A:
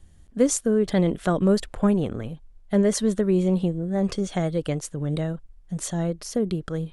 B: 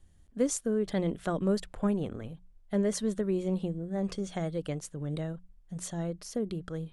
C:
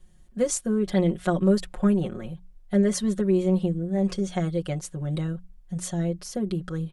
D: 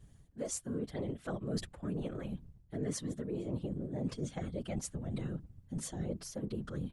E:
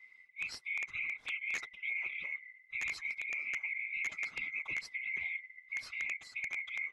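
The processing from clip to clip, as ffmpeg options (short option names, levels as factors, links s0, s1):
-af "bandreject=f=60:t=h:w=6,bandreject=f=120:t=h:w=6,bandreject=f=180:t=h:w=6,volume=0.398"
-af "aecho=1:1:5.5:0.88,volume=1.41"
-af "areverse,acompressor=threshold=0.0251:ratio=6,areverse,afftfilt=real='hypot(re,im)*cos(2*PI*random(0))':imag='hypot(re,im)*sin(2*PI*random(1))':win_size=512:overlap=0.75,volume=1.33"
-af "afftfilt=real='real(if(lt(b,920),b+92*(1-2*mod(floor(b/92),2)),b),0)':imag='imag(if(lt(b,920),b+92*(1-2*mod(floor(b/92),2)),b),0)':win_size=2048:overlap=0.75,aeval=exprs='(mod(23.7*val(0)+1,2)-1)/23.7':c=same,lowpass=4000"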